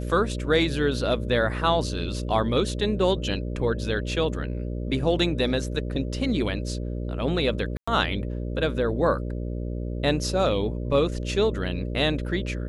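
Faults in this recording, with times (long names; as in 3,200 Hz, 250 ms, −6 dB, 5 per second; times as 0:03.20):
mains buzz 60 Hz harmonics 10 −30 dBFS
0:07.77–0:07.88: drop-out 105 ms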